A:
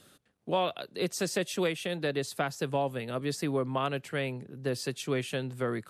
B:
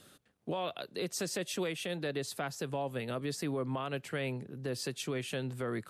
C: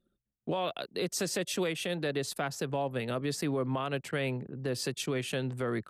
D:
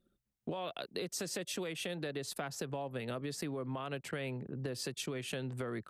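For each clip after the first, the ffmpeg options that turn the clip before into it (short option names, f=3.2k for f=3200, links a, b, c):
-af "alimiter=level_in=2dB:limit=-24dB:level=0:latency=1:release=140,volume=-2dB"
-af "anlmdn=0.00631,volume=3.5dB"
-af "acompressor=threshold=-37dB:ratio=6,volume=1dB"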